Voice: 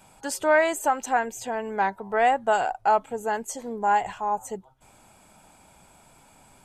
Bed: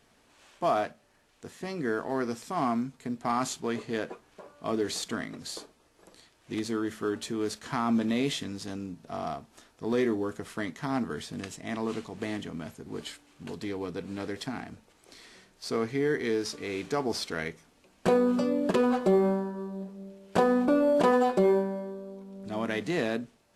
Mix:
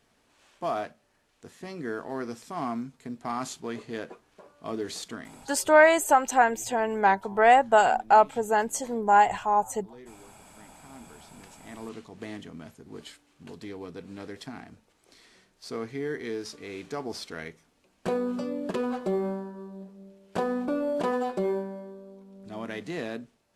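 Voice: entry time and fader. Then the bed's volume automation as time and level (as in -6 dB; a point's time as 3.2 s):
5.25 s, +3.0 dB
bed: 5.05 s -3.5 dB
5.97 s -22 dB
10.65 s -22 dB
12.14 s -5 dB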